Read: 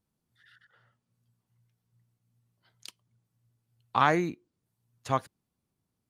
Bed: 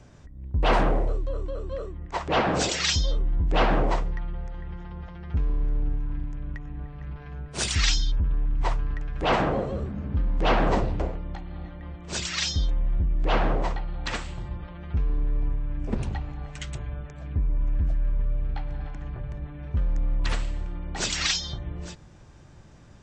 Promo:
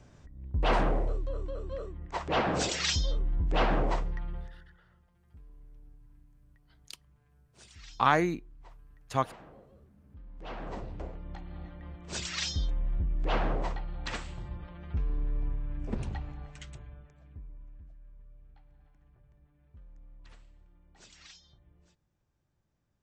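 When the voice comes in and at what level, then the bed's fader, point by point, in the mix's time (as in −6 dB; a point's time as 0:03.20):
4.05 s, −0.5 dB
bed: 0:04.38 −5 dB
0:04.81 −28 dB
0:10.00 −28 dB
0:11.42 −6 dB
0:16.29 −6 dB
0:17.94 −28 dB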